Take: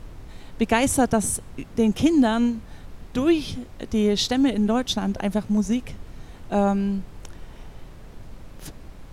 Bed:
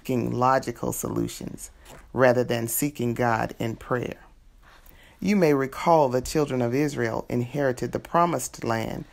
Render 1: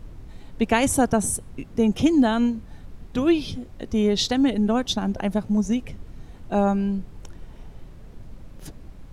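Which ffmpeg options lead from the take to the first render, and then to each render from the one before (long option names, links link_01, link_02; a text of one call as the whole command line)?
ffmpeg -i in.wav -af "afftdn=noise_reduction=6:noise_floor=-43" out.wav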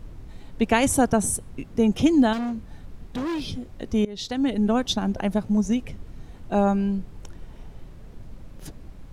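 ffmpeg -i in.wav -filter_complex "[0:a]asettb=1/sr,asplit=3[link_01][link_02][link_03];[link_01]atrim=end=2.334[link_04];[link_02]atrim=start=2.33:end=3.45,asetpts=PTS-STARTPTS,afade=type=in:duration=0.004:curve=qsin,afade=type=out:start_time=1.116:duration=0.004:curve=qsin,asoftclip=type=hard:threshold=-25.5dB[link_05];[link_03]atrim=start=3.446[link_06];[link_04][link_05]acrossfade=duration=0.004:curve1=hsin:curve2=qsin[link_07];[link_07][link_06]acrossfade=duration=0.004:curve1=qsin:curve2=hsin,asplit=2[link_08][link_09];[link_08]atrim=end=4.05,asetpts=PTS-STARTPTS,afade=type=out:start_time=4.046:duration=0.004:curve=hsin:silence=0.0794328[link_10];[link_09]atrim=start=4.05,asetpts=PTS-STARTPTS,afade=type=in:duration=0.61:silence=0.0794328[link_11];[link_10][link_11]concat=n=2:v=0:a=1" out.wav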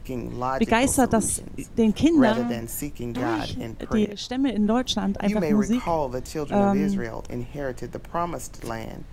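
ffmpeg -i in.wav -i bed.wav -filter_complex "[1:a]volume=-6dB[link_01];[0:a][link_01]amix=inputs=2:normalize=0" out.wav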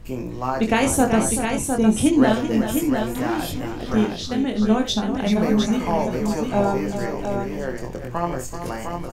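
ffmpeg -i in.wav -filter_complex "[0:a]asplit=2[link_01][link_02];[link_02]adelay=23,volume=-5dB[link_03];[link_01][link_03]amix=inputs=2:normalize=0,aecho=1:1:64|383|707:0.251|0.335|0.531" out.wav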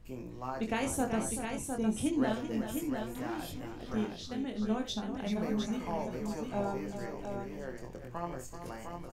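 ffmpeg -i in.wav -af "volume=-14dB" out.wav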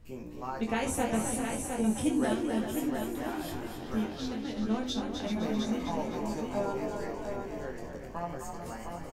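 ffmpeg -i in.wav -filter_complex "[0:a]asplit=2[link_01][link_02];[link_02]adelay=13,volume=-4.5dB[link_03];[link_01][link_03]amix=inputs=2:normalize=0,asplit=6[link_04][link_05][link_06][link_07][link_08][link_09];[link_05]adelay=257,afreqshift=41,volume=-6.5dB[link_10];[link_06]adelay=514,afreqshift=82,volume=-13.6dB[link_11];[link_07]adelay=771,afreqshift=123,volume=-20.8dB[link_12];[link_08]adelay=1028,afreqshift=164,volume=-27.9dB[link_13];[link_09]adelay=1285,afreqshift=205,volume=-35dB[link_14];[link_04][link_10][link_11][link_12][link_13][link_14]amix=inputs=6:normalize=0" out.wav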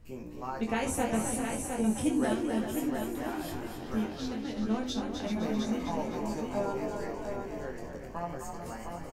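ffmpeg -i in.wav -af "equalizer=frequency=3500:width_type=o:width=0.27:gain=-3" out.wav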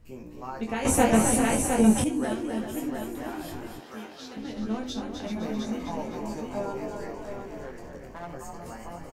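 ffmpeg -i in.wav -filter_complex "[0:a]asettb=1/sr,asplit=3[link_01][link_02][link_03];[link_01]atrim=end=3.804[link_04];[link_02]atrim=start=3.8:end=4.37,asetpts=PTS-STARTPTS,afade=type=in:duration=0.004:curve=qsin,afade=type=out:start_time=0.566:duration=0.004:curve=qsin,highpass=frequency=720:poles=1[link_05];[link_03]atrim=start=4.366[link_06];[link_04][link_05]acrossfade=duration=0.004:curve1=hsin:curve2=qsin[link_07];[link_07][link_06]acrossfade=duration=0.004:curve1=qsin:curve2=hsin,asettb=1/sr,asplit=3[link_08][link_09][link_10];[link_08]atrim=end=7.224[link_11];[link_09]atrim=start=7.22:end=8.34,asetpts=PTS-STARTPTS,afade=type=in:duration=0.004:curve=qsin,afade=type=out:start_time=1.116:duration=0.004:curve=qsin,aeval=exprs='clip(val(0),-1,0.0158)':channel_layout=same[link_12];[link_10]atrim=start=8.336[link_13];[link_11][link_12]acrossfade=duration=0.004:curve1=hsin:curve2=qsin[link_14];[link_14][link_13]acrossfade=duration=0.004:curve1=qsin:curve2=hsin,asplit=3[link_15][link_16][link_17];[link_15]atrim=end=0.852[link_18];[link_16]atrim=start=0.848:end=2.042,asetpts=PTS-STARTPTS,volume=9.5dB[link_19];[link_17]atrim=start=2.038[link_20];[link_18][link_19]acrossfade=duration=0.004:curve1=hsin:curve2=hsin[link_21];[link_21][link_20]acrossfade=duration=0.004:curve1=hsin:curve2=hsin" out.wav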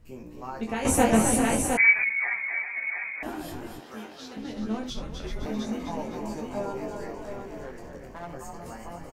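ffmpeg -i in.wav -filter_complex "[0:a]asettb=1/sr,asplit=3[link_01][link_02][link_03];[link_01]atrim=end=1.774[link_04];[link_02]atrim=start=1.77:end=3.23,asetpts=PTS-STARTPTS,afade=type=in:duration=0.004:curve=qsin,afade=type=out:start_time=1.456:duration=0.004:curve=qsin,lowpass=frequency=2100:width_type=q:width=0.5098,lowpass=frequency=2100:width_type=q:width=0.6013,lowpass=frequency=2100:width_type=q:width=0.9,lowpass=frequency=2100:width_type=q:width=2.563,afreqshift=-2500[link_05];[link_03]atrim=start=3.226[link_06];[link_04][link_05]acrossfade=duration=0.004:curve1=hsin:curve2=qsin[link_07];[link_07][link_06]acrossfade=duration=0.004:curve1=qsin:curve2=hsin,asettb=1/sr,asplit=3[link_08][link_09][link_10];[link_08]atrim=end=4.904[link_11];[link_09]atrim=start=4.9:end=5.46,asetpts=PTS-STARTPTS,afade=type=in:duration=0.004:curve=qsin,afade=type=out:start_time=0.556:duration=0.004:curve=qsin,afreqshift=-240[link_12];[link_10]atrim=start=5.456[link_13];[link_11][link_12]acrossfade=duration=0.004:curve1=hsin:curve2=qsin[link_14];[link_14][link_13]acrossfade=duration=0.004:curve1=qsin:curve2=hsin" out.wav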